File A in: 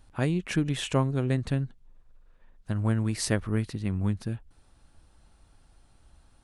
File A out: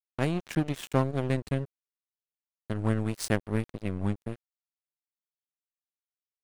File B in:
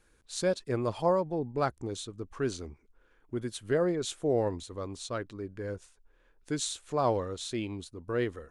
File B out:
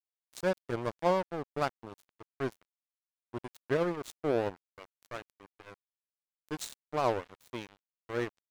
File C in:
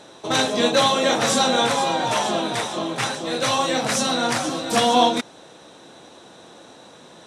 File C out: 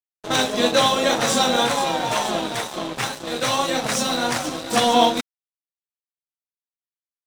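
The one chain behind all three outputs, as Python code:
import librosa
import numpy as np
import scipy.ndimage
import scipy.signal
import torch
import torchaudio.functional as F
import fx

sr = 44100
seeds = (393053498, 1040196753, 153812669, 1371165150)

y = fx.wow_flutter(x, sr, seeds[0], rate_hz=2.1, depth_cents=29.0)
y = np.sign(y) * np.maximum(np.abs(y) - 10.0 ** (-32.0 / 20.0), 0.0)
y = y * librosa.db_to_amplitude(1.5)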